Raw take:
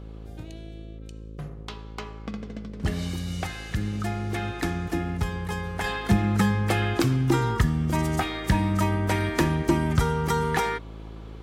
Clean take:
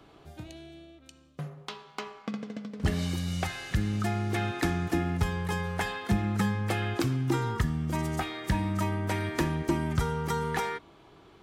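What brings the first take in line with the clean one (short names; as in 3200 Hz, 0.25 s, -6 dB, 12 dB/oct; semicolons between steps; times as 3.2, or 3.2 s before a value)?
de-hum 54.1 Hz, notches 10; gain 0 dB, from 5.84 s -5.5 dB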